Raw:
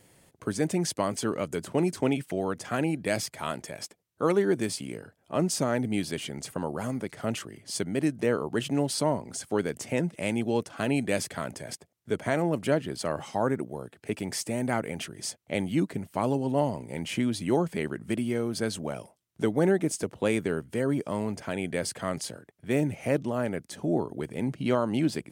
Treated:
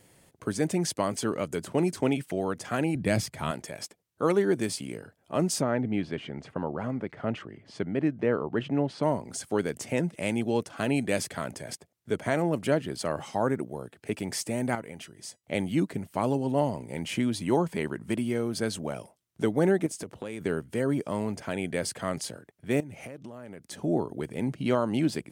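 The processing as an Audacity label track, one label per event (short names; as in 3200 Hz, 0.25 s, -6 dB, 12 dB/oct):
2.950000	3.510000	tone controls bass +10 dB, treble -2 dB
5.610000	9.030000	LPF 2300 Hz
14.750000	15.440000	resonator 970 Hz, decay 0.17 s
17.360000	18.220000	bell 960 Hz +7 dB 0.25 oct
19.860000	20.410000	compressor 5:1, threshold -33 dBFS
22.800000	23.710000	compressor 8:1, threshold -38 dBFS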